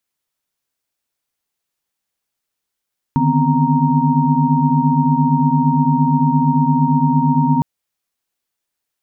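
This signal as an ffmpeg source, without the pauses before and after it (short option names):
-f lavfi -i "aevalsrc='0.126*(sin(2*PI*146.83*t)+sin(2*PI*155.56*t)+sin(2*PI*246.94*t)+sin(2*PI*261.63*t)+sin(2*PI*932.33*t))':d=4.46:s=44100"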